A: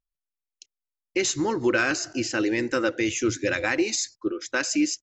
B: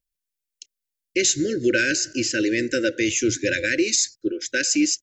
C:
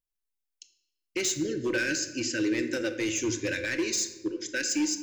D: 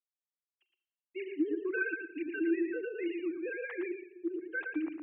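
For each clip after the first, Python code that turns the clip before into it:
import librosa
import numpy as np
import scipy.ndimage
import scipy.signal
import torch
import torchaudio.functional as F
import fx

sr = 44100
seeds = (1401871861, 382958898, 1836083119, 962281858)

y1 = scipy.signal.sosfilt(scipy.signal.cheby1(4, 1.0, [580.0, 1500.0], 'bandstop', fs=sr, output='sos'), x)
y1 = fx.high_shelf(y1, sr, hz=4900.0, db=8.0)
y1 = y1 * 10.0 ** (2.5 / 20.0)
y2 = np.clip(10.0 ** (16.0 / 20.0) * y1, -1.0, 1.0) / 10.0 ** (16.0 / 20.0)
y2 = fx.room_shoebox(y2, sr, seeds[0], volume_m3=520.0, walls='mixed', distance_m=0.52)
y2 = y2 * 10.0 ** (-7.5 / 20.0)
y3 = fx.sine_speech(y2, sr)
y3 = y3 + 10.0 ** (-6.0 / 20.0) * np.pad(y3, (int(114 * sr / 1000.0), 0))[:len(y3)]
y3 = y3 * 10.0 ** (-6.5 / 20.0)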